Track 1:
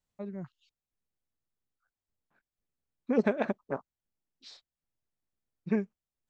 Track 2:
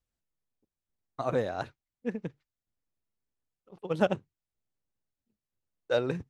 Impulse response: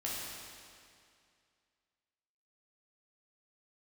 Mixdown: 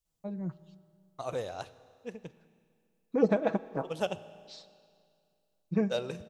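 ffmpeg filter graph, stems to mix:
-filter_complex "[0:a]aecho=1:1:6.2:0.61,adelay=50,volume=1dB,asplit=2[a][b];[b]volume=-17dB[c];[1:a]equalizer=f=125:t=o:w=1:g=-3,equalizer=f=250:t=o:w=1:g=-9,equalizer=f=4k:t=o:w=1:g=10,aexciter=amount=1.4:drive=3.2:freq=2.2k,volume=-4dB,asplit=2[d][e];[e]volume=-17dB[f];[2:a]atrim=start_sample=2205[g];[c][f]amix=inputs=2:normalize=0[h];[h][g]afir=irnorm=-1:irlink=0[i];[a][d][i]amix=inputs=3:normalize=0,equalizer=f=2k:w=0.97:g=-8"

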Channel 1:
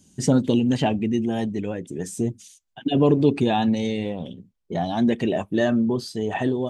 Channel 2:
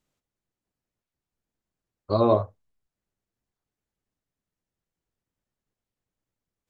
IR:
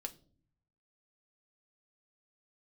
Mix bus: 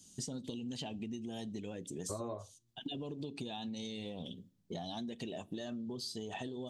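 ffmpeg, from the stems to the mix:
-filter_complex "[0:a]highshelf=f=2.7k:t=q:w=1.5:g=9.5,acompressor=threshold=-21dB:ratio=6,volume=-11.5dB,asplit=2[a][b];[b]volume=-8.5dB[c];[1:a]volume=-1.5dB[d];[2:a]atrim=start_sample=2205[e];[c][e]afir=irnorm=-1:irlink=0[f];[a][d][f]amix=inputs=3:normalize=0,acompressor=threshold=-38dB:ratio=12"

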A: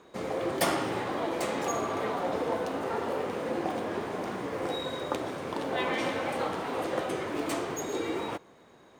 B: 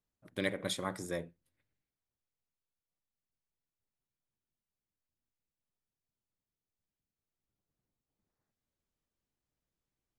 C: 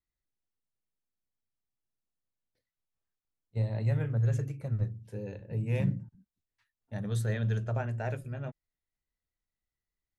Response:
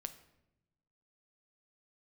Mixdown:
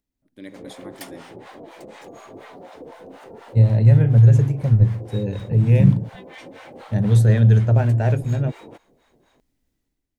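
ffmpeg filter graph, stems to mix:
-filter_complex "[0:a]acompressor=threshold=-33dB:ratio=4,acrossover=split=660[a][b];[a]aeval=exprs='val(0)*(1-1/2+1/2*cos(2*PI*4.1*n/s))':c=same[c];[b]aeval=exprs='val(0)*(1-1/2-1/2*cos(2*PI*4.1*n/s))':c=same[d];[c][d]amix=inputs=2:normalize=0,adelay=400,volume=-10.5dB[e];[1:a]equalizer=f=270:w=2.2:g=14,acompressor=mode=upward:threshold=-53dB:ratio=2.5,volume=-18.5dB[f];[2:a]lowshelf=f=420:g=9.5,volume=-2.5dB[g];[e][f][g]amix=inputs=3:normalize=0,equalizer=f=1.2k:w=3:g=-5,dynaudnorm=f=120:g=7:m=11dB"

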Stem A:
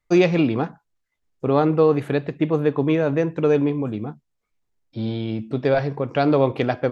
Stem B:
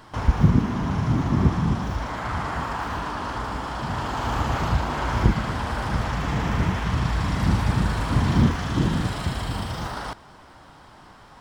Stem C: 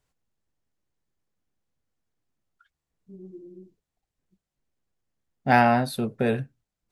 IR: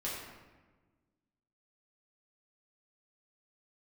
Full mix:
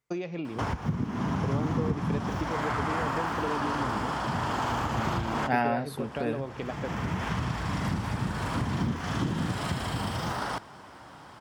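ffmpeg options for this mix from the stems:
-filter_complex "[0:a]acompressor=threshold=-24dB:ratio=8,volume=-7dB[a];[1:a]acompressor=threshold=-24dB:ratio=12,adelay=450,volume=0.5dB[b];[2:a]volume=-8dB,asplit=2[c][d];[d]apad=whole_len=522862[e];[b][e]sidechaincompress=threshold=-47dB:ratio=8:attack=31:release=561[f];[a][f][c]amix=inputs=3:normalize=0,highpass=96,equalizer=f=4k:w=4.5:g=-3.5"

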